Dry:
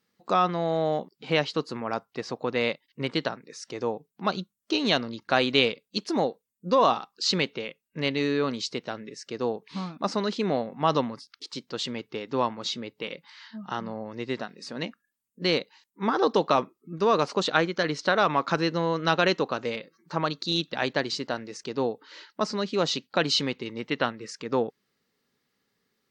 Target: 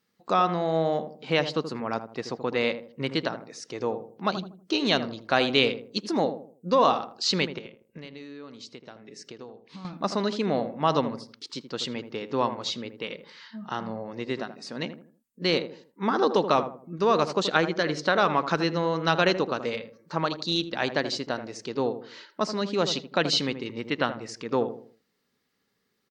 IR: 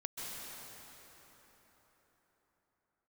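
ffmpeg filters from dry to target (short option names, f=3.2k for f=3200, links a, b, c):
-filter_complex "[0:a]asettb=1/sr,asplit=3[a][b][c];[a]atrim=end=7.584[d];[b]atrim=start=7.58:end=9.85,asetpts=PTS-STARTPTS,afade=t=in:d=0.004:c=qsin,afade=t=out:st=2.266:d=0.004:c=qsin,acompressor=threshold=-40dB:ratio=12[e];[c]atrim=start=9.846[f];[d][e]acrossfade=d=0.004:c1=hsin:c2=qsin[g];[g][f]acrossfade=d=0.004:c1=qsin:c2=hsin,asplit=2[h][i];[i]adelay=80,lowpass=f=870:p=1,volume=-8.5dB,asplit=2[j][k];[k]adelay=80,lowpass=f=870:p=1,volume=0.4,asplit=2[l][m];[m]adelay=80,lowpass=f=870:p=1,volume=0.4,asplit=2[n][o];[o]adelay=80,lowpass=f=870:p=1,volume=0.4[p];[h][j][l][n][p]amix=inputs=5:normalize=0"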